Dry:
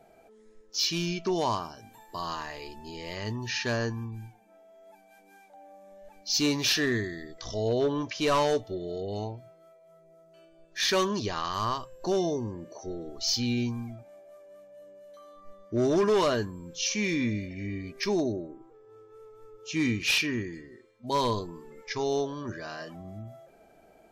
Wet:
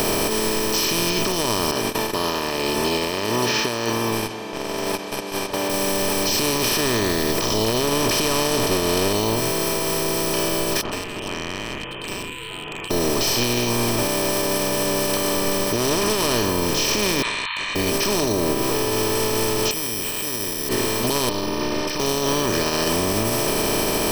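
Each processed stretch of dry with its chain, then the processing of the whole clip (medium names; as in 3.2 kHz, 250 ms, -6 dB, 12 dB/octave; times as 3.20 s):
1.71–5.70 s: high-pass 430 Hz + gate -55 dBFS, range -34 dB + distance through air 360 m
7.87–9.13 s: companding laws mixed up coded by mu + low-pass 6.7 kHz
10.81–12.91 s: frequency inversion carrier 3.1 kHz + compression 4:1, threshold -43 dBFS + gate -38 dBFS, range -39 dB
17.22–17.76 s: brick-wall FIR band-pass 910–4300 Hz + upward expansion, over -50 dBFS
19.71–20.69 s: bass shelf 88 Hz -10 dB + careless resampling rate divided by 8×, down filtered, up zero stuff
21.29–22.00 s: careless resampling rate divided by 4×, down none, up filtered + robot voice 302 Hz + tape noise reduction on one side only decoder only
whole clip: spectral levelling over time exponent 0.2; bass shelf 110 Hz +11 dB; peak limiter -11 dBFS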